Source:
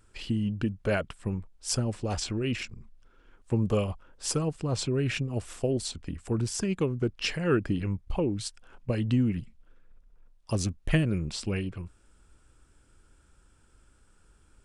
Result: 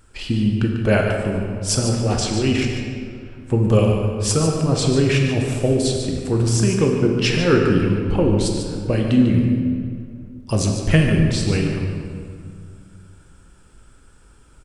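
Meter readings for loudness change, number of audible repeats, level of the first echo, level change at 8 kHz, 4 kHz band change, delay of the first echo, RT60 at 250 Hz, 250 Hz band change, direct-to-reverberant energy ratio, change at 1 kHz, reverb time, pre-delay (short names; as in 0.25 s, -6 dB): +11.0 dB, 1, -9.0 dB, +10.0 dB, +10.0 dB, 0.146 s, 2.6 s, +11.5 dB, 0.5 dB, +11.0 dB, 2.2 s, 8 ms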